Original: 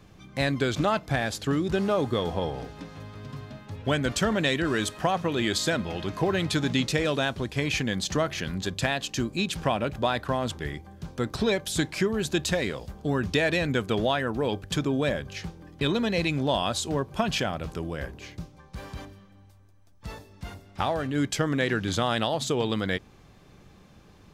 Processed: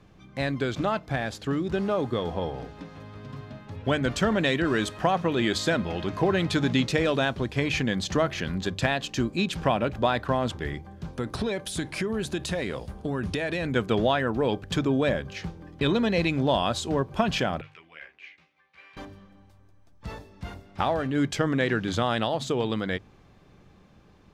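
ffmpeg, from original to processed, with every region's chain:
-filter_complex "[0:a]asettb=1/sr,asplit=3[a][b][c];[a]atrim=end=11.134[d];[b]atrim=start=11.13:end=13.76,asetpts=PTS-STARTPTS,afade=t=in:d=0.004:c=qsin,afade=t=out:st=2.626:d=0.004:c=qsin,equalizer=f=9.6k:w=5.8:g=12.5,acompressor=threshold=-26dB:ratio=6:attack=3.2:release=140:knee=1:detection=peak[e];[c]atrim=start=13.756[f];[d][e]acrossfade=d=0.004:c1=hsin:c2=qsin[g];[g][f]acrossfade=d=0.004:c1=qsin:c2=hsin,asettb=1/sr,asplit=3[h][i][j];[h]atrim=end=17.614[k];[i]atrim=start=17.61:end=18.97,asetpts=PTS-STARTPTS,afade=t=in:d=0.004:c=qsin,afade=t=out:st=1.356:d=0.004:c=qsin,bandpass=f=2.3k:t=q:w=3.5,asplit=2[l][m];[m]adelay=13,volume=-3dB[n];[l][n]amix=inputs=2:normalize=0,atrim=end_sample=59976[o];[j]atrim=start=18.966[p];[k][o]acrossfade=d=0.004:c1=hsin:c2=qsin[q];[q][p]acrossfade=d=0.004:c1=qsin:c2=hsin,aemphasis=mode=reproduction:type=cd,bandreject=f=50:t=h:w=6,bandreject=f=100:t=h:w=6,bandreject=f=150:t=h:w=6,dynaudnorm=f=760:g=9:m=4dB,volume=-2dB"

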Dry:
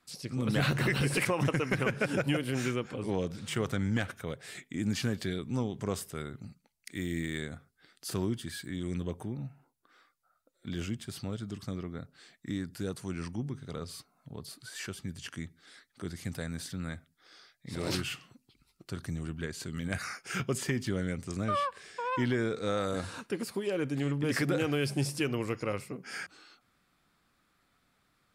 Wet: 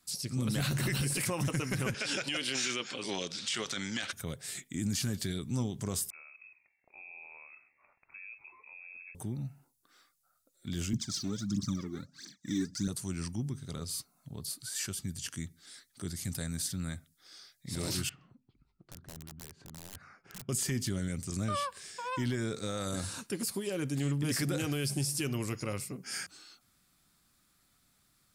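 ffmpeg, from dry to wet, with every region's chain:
-filter_complex "[0:a]asettb=1/sr,asplit=3[a][b][c];[a]atrim=end=1.944[d];[b]atrim=start=1.94:end=4.13,asetpts=PTS-STARTPTS,afade=t=in:d=0.004:c=qsin,afade=t=out:st=2.186:d=0.004:c=qsin,highpass=300,lowpass=6.2k,equalizer=f=3.7k:t=o:w=2.6:g=13[e];[c]atrim=start=4.126[f];[d][e]acrossfade=d=0.004:c1=hsin:c2=qsin[g];[g][f]acrossfade=d=0.004:c1=qsin:c2=hsin,asettb=1/sr,asplit=3[h][i][j];[h]atrim=end=6.104[k];[i]atrim=start=6.1:end=9.15,asetpts=PTS-STARTPTS,afade=t=in:d=0.004:c=qsin,afade=t=out:st=3.046:d=0.004:c=qsin,acompressor=threshold=-55dB:ratio=2:attack=3.2:release=140:knee=1:detection=peak,asplit=6[l][m][n][o][p][q];[m]adelay=132,afreqshift=130,volume=-19dB[r];[n]adelay=264,afreqshift=260,volume=-23.7dB[s];[o]adelay=396,afreqshift=390,volume=-28.5dB[t];[p]adelay=528,afreqshift=520,volume=-33.2dB[u];[q]adelay=660,afreqshift=650,volume=-37.9dB[v];[l][r][s][t][u][v]amix=inputs=6:normalize=0,atrim=end_sample=134505,lowpass=f=2.3k:t=q:w=0.5098,lowpass=f=2.3k:t=q:w=0.6013,lowpass=f=2.3k:t=q:w=0.9,lowpass=f=2.3k:t=q:w=2.563,afreqshift=-2700[w];[j]atrim=start=9.146[x];[k][w]acrossfade=d=0.004:c1=hsin:c2=qsin[y];[y][x]acrossfade=d=0.004:c1=qsin:c2=hsin,asettb=1/sr,asplit=3[z][aa][ab];[z]atrim=end=10.934[ac];[aa]atrim=start=10.93:end=12.88,asetpts=PTS-STARTPTS,afade=t=in:d=0.004:c=qsin,afade=t=out:st=1.946:d=0.004:c=qsin,highpass=120,equalizer=f=200:t=q:w=4:g=8,equalizer=f=290:t=q:w=4:g=9,equalizer=f=450:t=q:w=4:g=-9,equalizer=f=730:t=q:w=4:g=-9,equalizer=f=2.8k:t=q:w=4:g=-10,equalizer=f=6k:t=q:w=4:g=7,lowpass=f=6.6k:w=0.5412,lowpass=f=6.6k:w=1.3066,aphaser=in_gain=1:out_gain=1:delay=2.9:decay=0.78:speed=1.5:type=triangular[ad];[ab]atrim=start=12.876[ae];[ac][ad]acrossfade=d=0.004:c1=hsin:c2=qsin[af];[af][ae]acrossfade=d=0.004:c1=qsin:c2=hsin,asettb=1/sr,asplit=3[ag][ah][ai];[ag]atrim=end=18.094[aj];[ah]atrim=start=18.09:end=20.49,asetpts=PTS-STARTPTS,afade=t=in:d=0.004:c=qsin,afade=t=out:st=2.396:d=0.004:c=qsin,lowpass=1.3k,acompressor=threshold=-55dB:ratio=2:attack=3.2:release=140:knee=1:detection=peak,aeval=exprs='(mod(119*val(0)+1,2)-1)/119':c=same[ak];[ai]atrim=start=20.486[al];[aj][ak]acrossfade=d=0.004:c1=hsin:c2=qsin[am];[am][al]acrossfade=d=0.004:c1=qsin:c2=hsin,bass=f=250:g=6,treble=f=4k:g=15,bandreject=f=470:w=12,alimiter=limit=-19.5dB:level=0:latency=1:release=14,volume=-4dB"

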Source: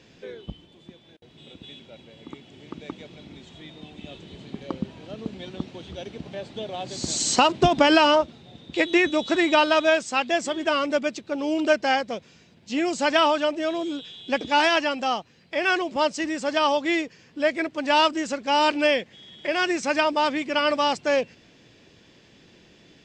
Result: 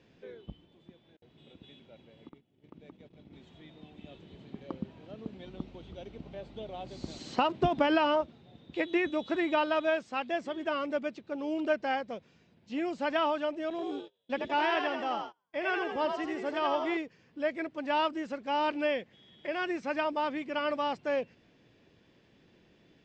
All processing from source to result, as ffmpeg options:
-filter_complex "[0:a]asettb=1/sr,asplit=3[a][b][c];[a]atrim=end=2.294[d];[b]atrim=start=2.29:end=3.33,asetpts=PTS-STARTPTS,afade=t=in:d=0.004:c=qsin,afade=t=out:st=1.036:d=0.004:c=qsin,agate=range=-20dB:threshold=-45dB:ratio=16:release=100:detection=peak,lowshelf=f=460:g=6.5,acompressor=threshold=-43dB:ratio=2.5:attack=3.2:release=140:knee=1:detection=peak[e];[c]atrim=start=3.326[f];[d][e]acrossfade=d=0.004:c1=hsin:c2=qsin[g];[g][f]acrossfade=d=0.004:c1=qsin:c2=hsin,asettb=1/sr,asplit=3[h][i][j];[h]atrim=end=5.454[k];[i]atrim=start=5.45:end=7.19,asetpts=PTS-STARTPTS,afade=t=in:d=0.004:c=qsin,afade=t=out:st=1.736:d=0.004:c=qsin,bandreject=f=1.7k:w=11,aeval=exprs='val(0)+0.00501*(sin(2*PI*50*n/s)+sin(2*PI*2*50*n/s)/2+sin(2*PI*3*50*n/s)/3+sin(2*PI*4*50*n/s)/4+sin(2*PI*5*50*n/s)/5)':c=same[l];[j]atrim=start=7.186[m];[k][l]acrossfade=d=0.004:c1=hsin:c2=qsin[n];[n][m]acrossfade=d=0.004:c1=qsin:c2=hsin,asettb=1/sr,asplit=3[o][p][q];[o]atrim=end=13.704[r];[p]atrim=start=13.7:end=16.97,asetpts=PTS-STARTPTS,afade=t=in:d=0.004:c=qsin,afade=t=out:st=3.266:d=0.004:c=qsin,asplit=7[s][t][u][v][w][x][y];[t]adelay=83,afreqshift=58,volume=-5dB[z];[u]adelay=166,afreqshift=116,volume=-11.6dB[aa];[v]adelay=249,afreqshift=174,volume=-18.1dB[ab];[w]adelay=332,afreqshift=232,volume=-24.7dB[ac];[x]adelay=415,afreqshift=290,volume=-31.2dB[ad];[y]adelay=498,afreqshift=348,volume=-37.8dB[ae];[s][z][aa][ab][ac][ad][ae]amix=inputs=7:normalize=0,atrim=end_sample=144207,agate=range=-30dB:threshold=-33dB:ratio=16:release=100:detection=peak[af];[q]atrim=start=16.966[ag];[r][af]acrossfade=d=0.004:c1=hsin:c2=qsin[ah];[ah][ag]acrossfade=d=0.004:c1=qsin:c2=hsin,acrossover=split=4600[ai][aj];[aj]acompressor=threshold=-45dB:ratio=4:attack=1:release=60[ak];[ai][ak]amix=inputs=2:normalize=0,aemphasis=mode=reproduction:type=75kf,volume=-8dB"

